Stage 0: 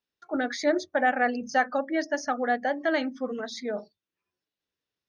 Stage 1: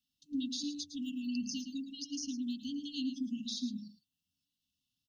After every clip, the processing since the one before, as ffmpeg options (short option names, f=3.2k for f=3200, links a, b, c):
-filter_complex "[0:a]acrossover=split=260|2600|5900[a][b][c][d];[a]acompressor=threshold=-44dB:ratio=4[e];[b]acompressor=threshold=-37dB:ratio=4[f];[c]acompressor=threshold=-46dB:ratio=4[g];[d]acompressor=threshold=-53dB:ratio=4[h];[e][f][g][h]amix=inputs=4:normalize=0,aecho=1:1:110:0.299,afftfilt=real='re*(1-between(b*sr/4096,300,2600))':imag='im*(1-between(b*sr/4096,300,2600))':win_size=4096:overlap=0.75,volume=4dB"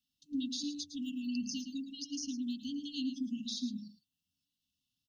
-af anull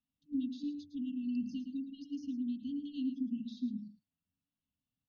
-af "lowpass=1.5k,volume=1dB"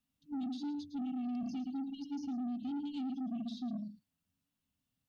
-af "alimiter=level_in=10dB:limit=-24dB:level=0:latency=1:release=17,volume=-10dB,asoftclip=type=tanh:threshold=-40dB,volume=5.5dB"